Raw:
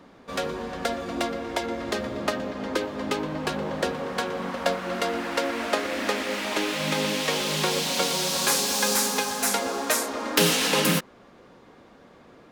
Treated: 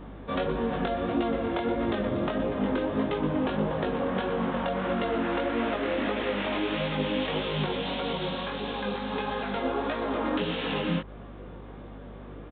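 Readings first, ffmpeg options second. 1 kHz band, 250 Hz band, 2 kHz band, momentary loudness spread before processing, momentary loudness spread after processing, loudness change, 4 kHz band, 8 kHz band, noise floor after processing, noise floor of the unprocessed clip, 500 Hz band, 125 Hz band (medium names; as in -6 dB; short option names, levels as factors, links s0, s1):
-2.5 dB, +1.5 dB, -5.5 dB, 8 LU, 6 LU, -3.5 dB, -9.0 dB, under -40 dB, -43 dBFS, -52 dBFS, -1.0 dB, +1.5 dB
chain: -af "alimiter=limit=0.133:level=0:latency=1:release=113,acompressor=threshold=0.0316:ratio=6,lowshelf=f=470:g=5.5,flanger=delay=17:depth=6.2:speed=1.6,aresample=8000,aresample=44100,aeval=exprs='val(0)+0.00316*(sin(2*PI*50*n/s)+sin(2*PI*2*50*n/s)/2+sin(2*PI*3*50*n/s)/3+sin(2*PI*4*50*n/s)/4+sin(2*PI*5*50*n/s)/5)':c=same,equalizer=f=2100:t=o:w=0.77:g=-2.5,volume=2"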